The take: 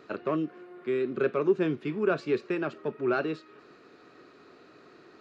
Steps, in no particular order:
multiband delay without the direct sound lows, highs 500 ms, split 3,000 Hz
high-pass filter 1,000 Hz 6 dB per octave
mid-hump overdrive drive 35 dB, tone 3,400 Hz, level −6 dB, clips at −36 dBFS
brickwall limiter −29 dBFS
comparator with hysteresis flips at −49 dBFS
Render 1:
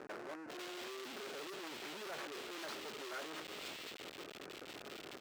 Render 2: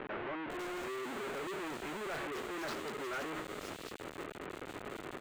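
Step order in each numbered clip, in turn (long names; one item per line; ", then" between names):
brickwall limiter, then comparator with hysteresis, then multiband delay without the direct sound, then mid-hump overdrive, then high-pass filter
comparator with hysteresis, then brickwall limiter, then high-pass filter, then mid-hump overdrive, then multiband delay without the direct sound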